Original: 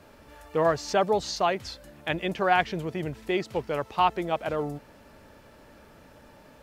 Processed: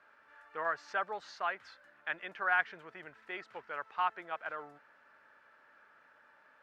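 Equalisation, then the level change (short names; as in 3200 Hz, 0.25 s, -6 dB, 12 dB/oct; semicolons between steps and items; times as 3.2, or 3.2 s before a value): band-pass 1500 Hz, Q 3.1; 0.0 dB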